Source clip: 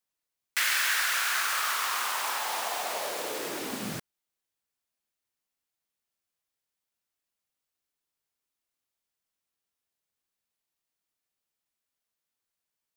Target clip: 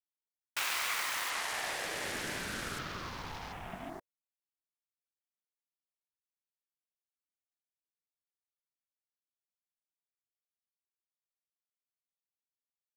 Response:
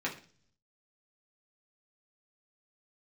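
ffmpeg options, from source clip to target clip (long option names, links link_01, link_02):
-filter_complex "[0:a]asettb=1/sr,asplit=3[link_01][link_02][link_03];[link_01]atrim=end=2.024[link_04];[link_02]atrim=start=2.02:end=2.85,asetpts=PTS-STARTPTS,afade=type=in:duration=0.004:curve=qsin,afade=type=out:start_time=0.826:duration=0.004:curve=qsin,aeval=exprs='val(0)+0.5*0.00794*sgn(val(0))':channel_layout=same[link_05];[link_03]atrim=start=2.846[link_06];[link_04][link_05]acrossfade=duration=0.004:curve1=hsin:curve2=qsin[link_07];[link_07][link_06]acrossfade=duration=0.004:curve1=qsin:curve2=hsin,afwtdn=0.00891,aeval=exprs='val(0)*sin(2*PI*550*n/s+550*0.25/0.43*sin(2*PI*0.43*n/s))':channel_layout=same,volume=-4.5dB"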